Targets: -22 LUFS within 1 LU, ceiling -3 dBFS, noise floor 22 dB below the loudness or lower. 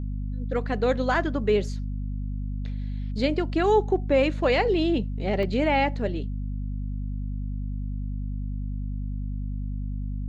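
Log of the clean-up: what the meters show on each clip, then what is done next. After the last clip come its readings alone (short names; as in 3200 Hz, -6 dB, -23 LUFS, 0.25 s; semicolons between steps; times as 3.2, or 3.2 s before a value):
dropouts 1; longest dropout 1.6 ms; hum 50 Hz; harmonics up to 250 Hz; hum level -27 dBFS; loudness -27.0 LUFS; peak -10.0 dBFS; loudness target -22.0 LUFS
-> interpolate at 5.43, 1.6 ms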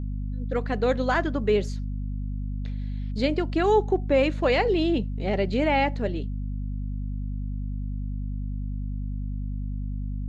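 dropouts 0; hum 50 Hz; harmonics up to 250 Hz; hum level -27 dBFS
-> de-hum 50 Hz, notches 5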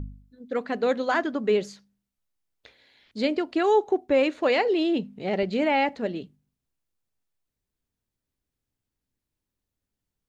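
hum none; loudness -25.0 LUFS; peak -11.0 dBFS; loudness target -22.0 LUFS
-> gain +3 dB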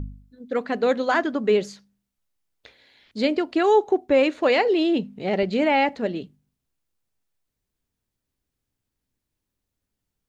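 loudness -22.0 LUFS; peak -8.0 dBFS; noise floor -83 dBFS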